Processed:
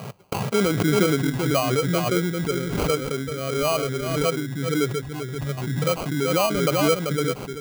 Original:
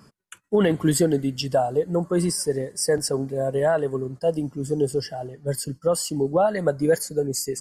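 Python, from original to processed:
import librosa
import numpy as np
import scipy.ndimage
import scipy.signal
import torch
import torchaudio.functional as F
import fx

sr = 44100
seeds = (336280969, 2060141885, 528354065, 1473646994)

y = scipy.signal.sosfilt(scipy.signal.ellip(3, 1.0, 40, [110.0, 3500.0], 'bandpass', fs=sr, output='sos'), x)
y = y + 10.0 ** (-6.0 / 20.0) * np.pad(y, (int(388 * sr / 1000.0), 0))[:len(y)]
y = fx.env_phaser(y, sr, low_hz=280.0, high_hz=2200.0, full_db=-15.5)
y = fx.sample_hold(y, sr, seeds[0], rate_hz=1800.0, jitter_pct=0)
y = fx.pre_swell(y, sr, db_per_s=32.0)
y = F.gain(torch.from_numpy(y), -1.0).numpy()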